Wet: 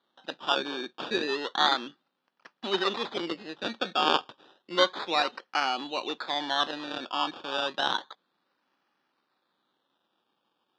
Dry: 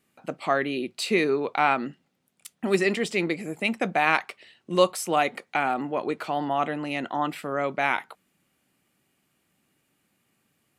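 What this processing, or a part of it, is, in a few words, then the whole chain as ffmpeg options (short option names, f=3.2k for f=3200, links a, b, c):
circuit-bent sampling toy: -af "acrusher=samples=17:mix=1:aa=0.000001:lfo=1:lforange=10.2:lforate=0.31,highpass=420,equalizer=f=440:t=q:w=4:g=-5,equalizer=f=660:t=q:w=4:g=-7,equalizer=f=2.1k:t=q:w=4:g=-8,equalizer=f=3.6k:t=q:w=4:g=9,lowpass=f=4.5k:w=0.5412,lowpass=f=4.5k:w=1.3066"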